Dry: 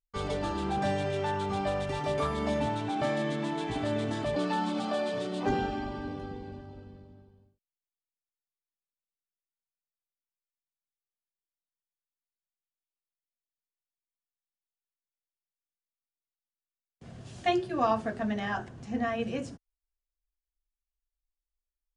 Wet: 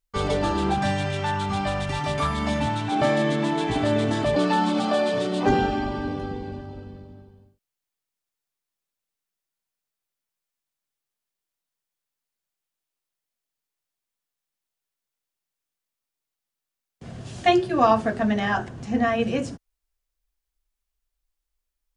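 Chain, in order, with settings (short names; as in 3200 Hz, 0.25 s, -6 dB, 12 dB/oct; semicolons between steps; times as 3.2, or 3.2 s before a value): 0.74–2.92 bell 450 Hz -12 dB 1 oct; gain +8.5 dB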